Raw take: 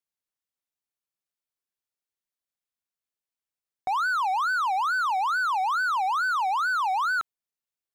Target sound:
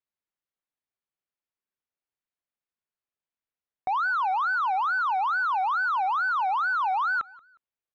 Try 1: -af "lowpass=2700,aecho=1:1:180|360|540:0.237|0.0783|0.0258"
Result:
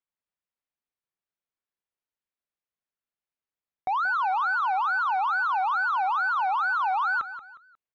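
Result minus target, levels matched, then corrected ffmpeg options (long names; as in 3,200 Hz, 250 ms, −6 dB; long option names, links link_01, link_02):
echo-to-direct +11 dB
-af "lowpass=2700,aecho=1:1:180|360:0.0668|0.0221"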